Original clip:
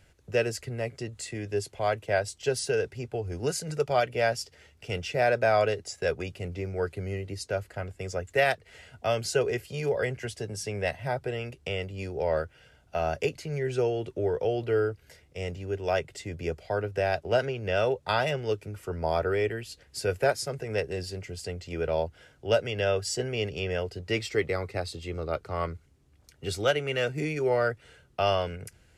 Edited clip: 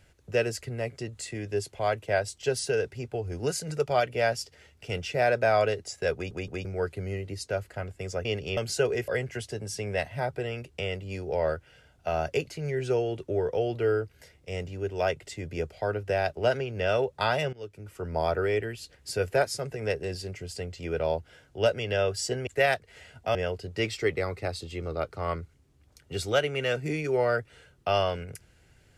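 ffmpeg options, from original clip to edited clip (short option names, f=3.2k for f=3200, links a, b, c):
-filter_complex "[0:a]asplit=10[a][b][c][d][e][f][g][h][i][j];[a]atrim=end=6.312[k];[b]atrim=start=6.138:end=6.312[l];[c]atrim=start=6.138:end=6.312[m];[d]atrim=start=6.648:end=8.252[n];[e]atrim=start=23.348:end=23.672[o];[f]atrim=start=9.128:end=9.642[p];[g]atrim=start=9.958:end=18.41,asetpts=PTS-STARTPTS,afade=t=out:st=8.448:d=0.004:c=hsin:silence=0.112202[q];[h]atrim=start=18.41:end=23.352,asetpts=PTS-STARTPTS,afade=t=in:d=0.6:silence=0.112202[r];[i]atrim=start=8.248:end=9.132[s];[j]atrim=start=23.668[t];[k][l]acrossfade=d=0.004:c1=hsin:c2=hsin[u];[u][m]acrossfade=d=0.004:c1=hsin:c2=hsin[v];[v][n]acrossfade=d=0.004:c1=hsin:c2=hsin[w];[w][o]acrossfade=d=0.004:c1=hsin:c2=hsin[x];[x][p]acrossfade=d=0.004:c1=hsin:c2=hsin[y];[q][r]concat=n=2:v=0:a=1[z];[y][z]acrossfade=d=0.004:c1=hsin:c2=hsin[aa];[aa][s]acrossfade=d=0.004:c1=hsin:c2=hsin[ab];[ab][t]acrossfade=d=0.004:c1=hsin:c2=hsin"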